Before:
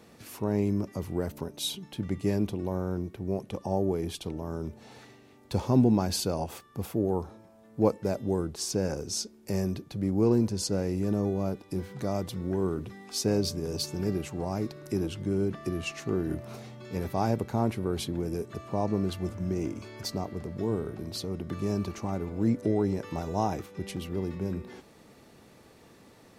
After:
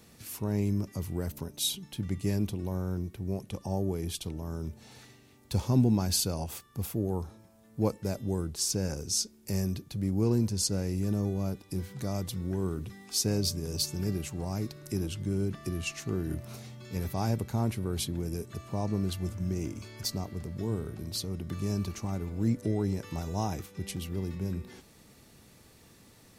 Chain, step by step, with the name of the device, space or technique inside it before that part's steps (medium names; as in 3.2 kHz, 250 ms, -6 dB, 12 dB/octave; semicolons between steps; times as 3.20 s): smiley-face EQ (bass shelf 170 Hz +5.5 dB; peaking EQ 530 Hz -6 dB 3 oct; treble shelf 5.3 kHz +8 dB); trim -1 dB